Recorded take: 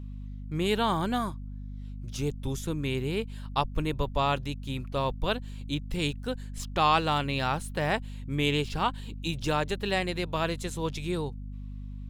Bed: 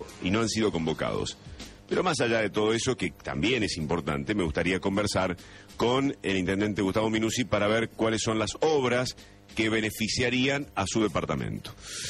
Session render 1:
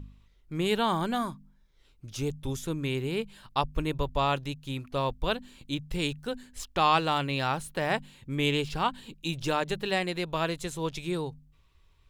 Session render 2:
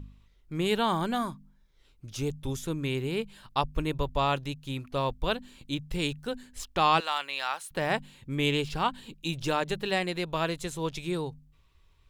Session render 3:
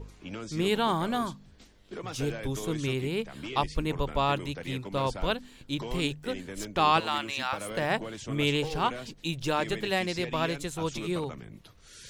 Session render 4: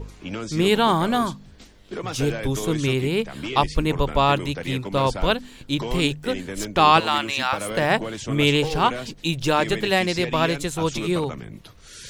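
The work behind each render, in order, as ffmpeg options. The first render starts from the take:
-af "bandreject=f=50:t=h:w=4,bandreject=f=100:t=h:w=4,bandreject=f=150:t=h:w=4,bandreject=f=200:t=h:w=4,bandreject=f=250:t=h:w=4"
-filter_complex "[0:a]asettb=1/sr,asplit=3[a][b][c];[a]atrim=end=7.004[d];[b]atrim=start=7:end=7.71,asetpts=PTS-STARTPTS,afade=t=in:d=0.004:c=qsin,afade=t=out:st=0.706:d=0.004:c=qsin,highpass=910[e];[c]atrim=start=7.706[f];[d][e]acrossfade=d=0.004:c1=hsin:c2=qsin[g];[g][f]acrossfade=d=0.004:c1=qsin:c2=hsin"
-filter_complex "[1:a]volume=-13.5dB[a];[0:a][a]amix=inputs=2:normalize=0"
-af "volume=8dB"

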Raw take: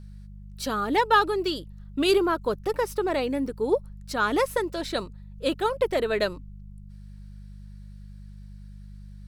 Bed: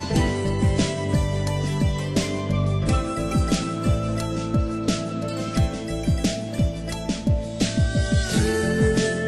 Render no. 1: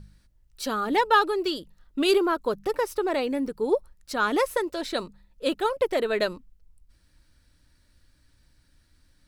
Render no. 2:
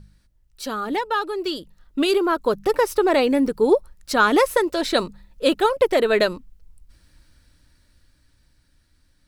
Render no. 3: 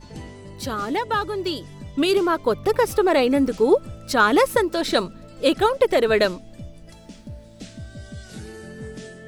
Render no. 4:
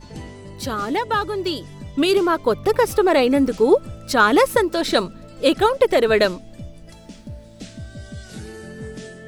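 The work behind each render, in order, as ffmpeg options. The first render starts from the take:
-af "bandreject=f=50:t=h:w=4,bandreject=f=100:t=h:w=4,bandreject=f=150:t=h:w=4,bandreject=f=200:t=h:w=4"
-af "alimiter=limit=-15.5dB:level=0:latency=1:release=417,dynaudnorm=f=210:g=21:m=9dB"
-filter_complex "[1:a]volume=-16.5dB[a];[0:a][a]amix=inputs=2:normalize=0"
-af "volume=2dB"

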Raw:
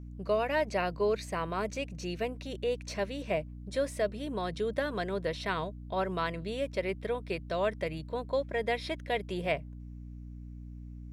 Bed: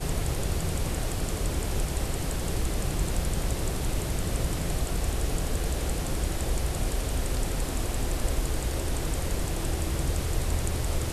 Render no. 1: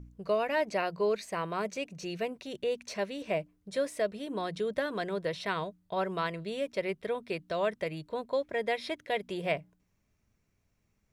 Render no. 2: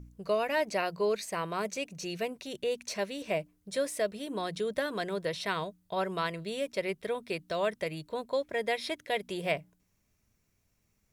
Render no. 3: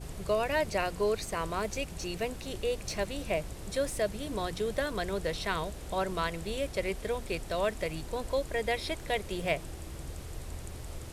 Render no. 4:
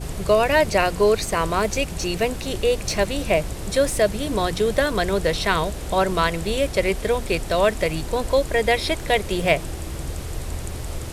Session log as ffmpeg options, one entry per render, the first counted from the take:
-af "bandreject=f=60:t=h:w=4,bandreject=f=120:t=h:w=4,bandreject=f=180:t=h:w=4,bandreject=f=240:t=h:w=4,bandreject=f=300:t=h:w=4"
-af "aemphasis=mode=production:type=cd"
-filter_complex "[1:a]volume=-13.5dB[a];[0:a][a]amix=inputs=2:normalize=0"
-af "volume=11.5dB"

